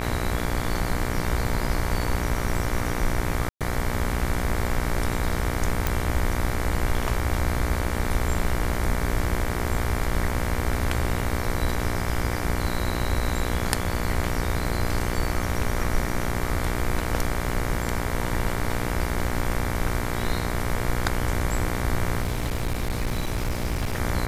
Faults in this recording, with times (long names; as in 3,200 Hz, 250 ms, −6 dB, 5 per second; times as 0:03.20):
mains buzz 60 Hz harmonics 39 −29 dBFS
0:03.49–0:03.61: drop-out 117 ms
0:05.87: click
0:22.22–0:23.98: clipping −21.5 dBFS